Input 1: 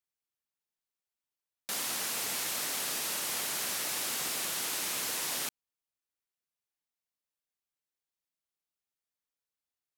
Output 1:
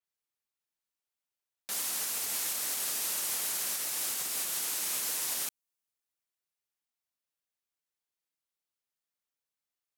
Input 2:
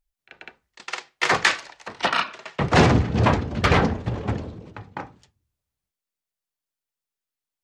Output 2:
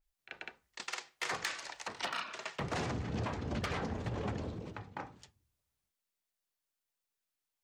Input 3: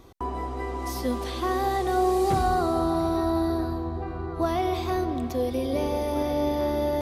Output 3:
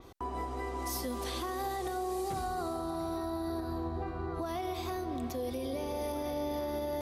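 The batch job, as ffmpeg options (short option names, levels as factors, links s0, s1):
-af "acompressor=threshold=0.0708:ratio=16,asoftclip=type=hard:threshold=0.133,lowshelf=f=370:g=-3,alimiter=level_in=1.5:limit=0.0631:level=0:latency=1:release=284,volume=0.668,adynamicequalizer=threshold=0.00224:dfrequency=5500:dqfactor=0.7:tfrequency=5500:tqfactor=0.7:attack=5:release=100:ratio=0.375:range=3.5:mode=boostabove:tftype=highshelf"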